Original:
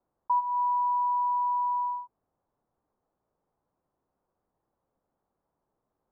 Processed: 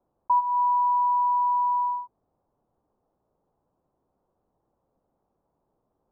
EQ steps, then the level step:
low-pass filter 1,000 Hz 12 dB per octave
+7.0 dB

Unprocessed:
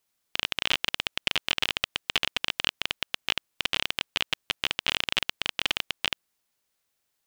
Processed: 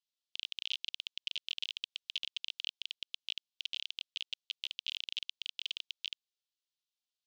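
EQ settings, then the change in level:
Butterworth high-pass 3,000 Hz 36 dB per octave
head-to-tape spacing loss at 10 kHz 38 dB
spectral tilt +4.5 dB per octave
−3.0 dB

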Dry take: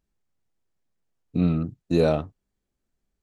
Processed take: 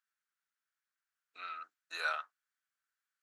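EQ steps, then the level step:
four-pole ladder high-pass 1,300 Hz, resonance 65%
+5.5 dB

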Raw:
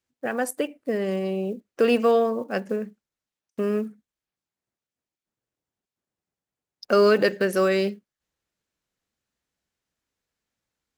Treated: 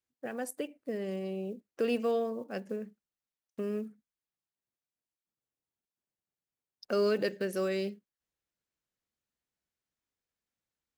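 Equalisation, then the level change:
dynamic equaliser 1,200 Hz, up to −6 dB, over −36 dBFS, Q 0.87
−9.0 dB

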